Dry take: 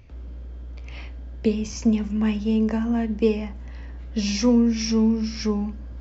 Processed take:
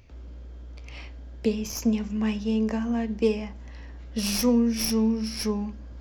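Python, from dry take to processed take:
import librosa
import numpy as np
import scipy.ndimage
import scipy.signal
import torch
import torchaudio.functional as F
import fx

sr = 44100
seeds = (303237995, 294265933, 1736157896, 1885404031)

y = fx.tracing_dist(x, sr, depth_ms=0.072)
y = fx.bass_treble(y, sr, bass_db=-3, treble_db=5)
y = y * librosa.db_to_amplitude(-2.0)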